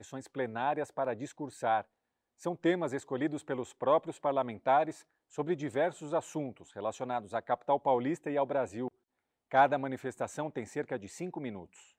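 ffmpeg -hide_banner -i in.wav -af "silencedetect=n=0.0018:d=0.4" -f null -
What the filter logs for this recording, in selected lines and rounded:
silence_start: 1.84
silence_end: 2.40 | silence_duration: 0.56
silence_start: 8.88
silence_end: 9.51 | silence_duration: 0.63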